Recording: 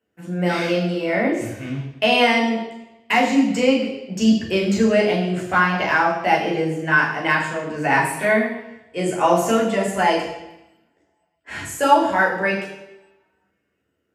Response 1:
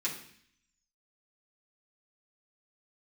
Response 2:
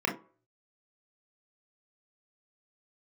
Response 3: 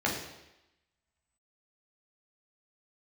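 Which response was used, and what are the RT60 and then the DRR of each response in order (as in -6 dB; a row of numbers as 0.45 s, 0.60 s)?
3; 0.60 s, 0.45 s, 0.90 s; -6.5 dB, -0.5 dB, -3.0 dB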